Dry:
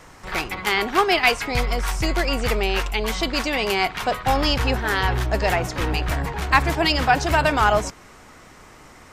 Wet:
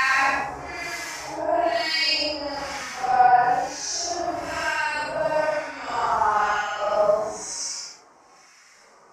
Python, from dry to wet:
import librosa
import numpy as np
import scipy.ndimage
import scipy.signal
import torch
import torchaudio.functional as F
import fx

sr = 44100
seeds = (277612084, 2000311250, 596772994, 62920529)

y = fx.high_shelf_res(x, sr, hz=4500.0, db=8.5, q=3.0)
y = fx.filter_lfo_bandpass(y, sr, shape='square', hz=6.0, low_hz=740.0, high_hz=2300.0, q=1.4)
y = fx.paulstretch(y, sr, seeds[0], factor=5.7, window_s=0.1, from_s=6.53)